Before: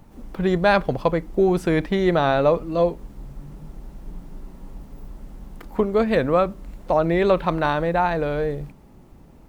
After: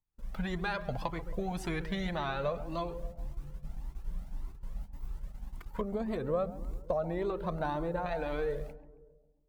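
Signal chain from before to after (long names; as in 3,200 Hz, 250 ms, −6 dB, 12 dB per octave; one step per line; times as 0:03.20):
noise gate −37 dBFS, range −37 dB
parametric band 360 Hz −9 dB 1.8 octaves, from 0:05.81 2,400 Hz, from 0:08.06 150 Hz
downward compressor 10 to 1, threshold −25 dBFS, peak gain reduction 12 dB
feedback echo with a low-pass in the loop 136 ms, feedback 59%, low-pass 1,100 Hz, level −11.5 dB
flanger whose copies keep moving one way rising 1.8 Hz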